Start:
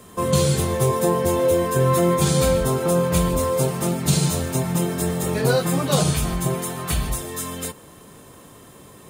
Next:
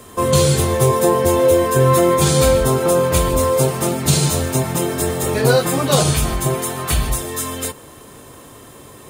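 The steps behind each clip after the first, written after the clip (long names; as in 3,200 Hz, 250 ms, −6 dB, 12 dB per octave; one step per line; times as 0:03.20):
parametric band 180 Hz −14 dB 0.21 octaves
level +5.5 dB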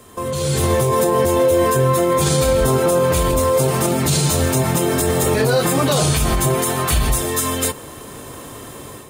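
brickwall limiter −13 dBFS, peak gain reduction 11 dB
automatic gain control gain up to 10 dB
level −4 dB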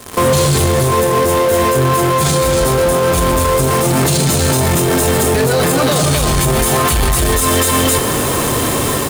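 single-tap delay 265 ms −4.5 dB
in parallel at −4 dB: fuzz pedal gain 43 dB, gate −38 dBFS
on the sum: brickwall limiter −10.5 dBFS, peak gain reduction 8 dB
level +3.5 dB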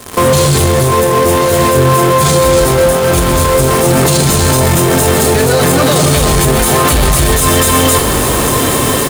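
single-tap delay 1,091 ms −8.5 dB
level +3 dB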